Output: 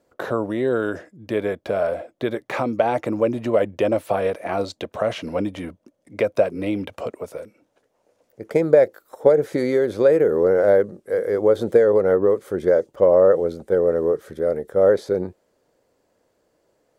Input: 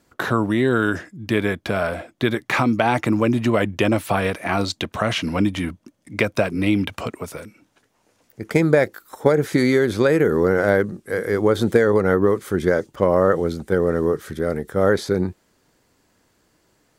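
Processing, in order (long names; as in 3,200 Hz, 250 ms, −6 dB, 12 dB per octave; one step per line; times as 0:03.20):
parametric band 540 Hz +15 dB 1.1 octaves
level −10 dB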